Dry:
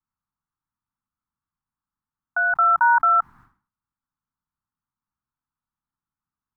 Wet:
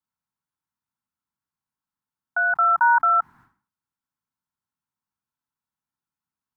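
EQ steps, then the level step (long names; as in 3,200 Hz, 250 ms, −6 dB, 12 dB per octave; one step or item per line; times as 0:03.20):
high-pass filter 150 Hz 6 dB per octave
notch filter 1,200 Hz, Q 8.1
0.0 dB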